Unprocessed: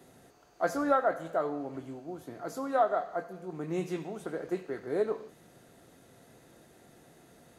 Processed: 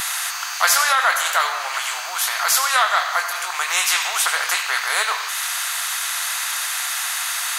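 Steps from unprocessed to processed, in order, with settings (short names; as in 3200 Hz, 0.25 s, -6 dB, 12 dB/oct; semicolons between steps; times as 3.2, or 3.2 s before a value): in parallel at -1.5 dB: compressor, threshold -42 dBFS, peak gain reduction 19.5 dB; on the sum: steep high-pass 1100 Hz 36 dB/oct; maximiser +24.5 dB; spectral compressor 2:1; gain -1 dB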